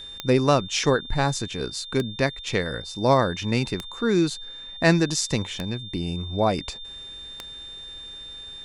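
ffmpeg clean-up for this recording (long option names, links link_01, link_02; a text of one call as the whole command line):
ffmpeg -i in.wav -af "adeclick=threshold=4,bandreject=frequency=3600:width=30" out.wav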